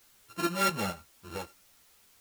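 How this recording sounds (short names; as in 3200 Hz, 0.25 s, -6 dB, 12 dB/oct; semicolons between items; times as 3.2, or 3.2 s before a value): a buzz of ramps at a fixed pitch in blocks of 32 samples; tremolo saw up 4.4 Hz, depth 55%; a quantiser's noise floor 10-bit, dither triangular; a shimmering, thickened sound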